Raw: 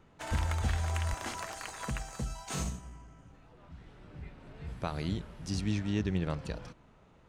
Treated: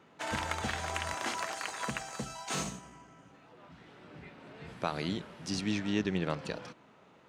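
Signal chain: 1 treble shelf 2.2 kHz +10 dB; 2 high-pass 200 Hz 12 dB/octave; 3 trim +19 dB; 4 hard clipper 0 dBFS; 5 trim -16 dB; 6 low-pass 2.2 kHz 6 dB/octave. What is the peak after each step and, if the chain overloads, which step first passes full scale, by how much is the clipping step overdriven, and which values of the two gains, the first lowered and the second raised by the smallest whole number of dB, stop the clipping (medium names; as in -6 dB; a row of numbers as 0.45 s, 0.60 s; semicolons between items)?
-15.0 dBFS, -15.5 dBFS, +3.5 dBFS, 0.0 dBFS, -16.0 dBFS, -16.5 dBFS; step 3, 3.5 dB; step 3 +15 dB, step 5 -12 dB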